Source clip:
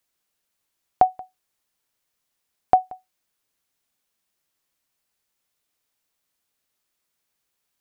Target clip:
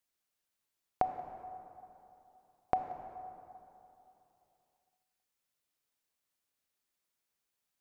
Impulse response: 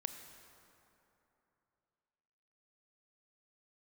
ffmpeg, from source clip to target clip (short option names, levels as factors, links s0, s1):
-filter_complex "[0:a]acompressor=threshold=0.126:ratio=6[s0];[1:a]atrim=start_sample=2205[s1];[s0][s1]afir=irnorm=-1:irlink=0,volume=0.473"